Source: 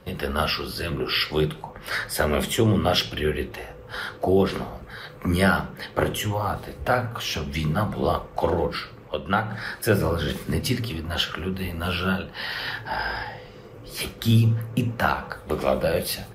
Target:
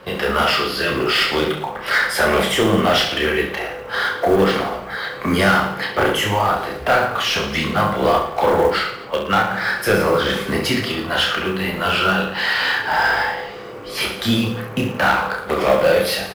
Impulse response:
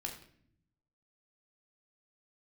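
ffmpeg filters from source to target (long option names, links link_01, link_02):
-filter_complex "[0:a]asplit=2[link_01][link_02];[link_02]highpass=frequency=720:poles=1,volume=19dB,asoftclip=type=tanh:threshold=-7.5dB[link_03];[link_01][link_03]amix=inputs=2:normalize=0,lowpass=frequency=2700:poles=1,volume=-6dB,aecho=1:1:30|67.5|114.4|173|246.2:0.631|0.398|0.251|0.158|0.1,acrusher=bits=7:mode=log:mix=0:aa=0.000001"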